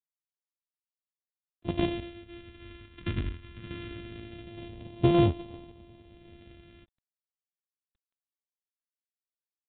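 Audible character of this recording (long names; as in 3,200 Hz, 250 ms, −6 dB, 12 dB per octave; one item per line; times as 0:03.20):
a buzz of ramps at a fixed pitch in blocks of 128 samples
sample-and-hold tremolo
phaser sweep stages 2, 0.23 Hz, lowest notch 700–1,500 Hz
G.726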